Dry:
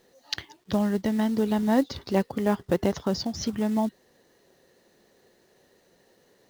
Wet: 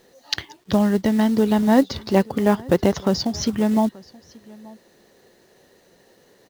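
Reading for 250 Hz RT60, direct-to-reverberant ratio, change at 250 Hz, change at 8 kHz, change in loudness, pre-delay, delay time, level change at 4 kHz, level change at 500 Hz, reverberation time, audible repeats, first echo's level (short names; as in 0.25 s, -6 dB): none, none, +6.5 dB, +6.5 dB, +6.5 dB, none, 0.881 s, +6.5 dB, +6.5 dB, none, 1, -23.5 dB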